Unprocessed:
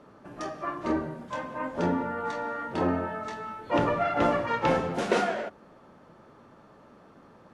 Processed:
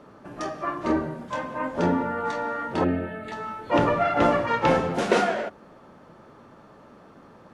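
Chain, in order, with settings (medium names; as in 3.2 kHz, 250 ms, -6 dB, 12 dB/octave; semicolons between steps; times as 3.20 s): 2.84–3.32 s: static phaser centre 2.5 kHz, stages 4; trim +4 dB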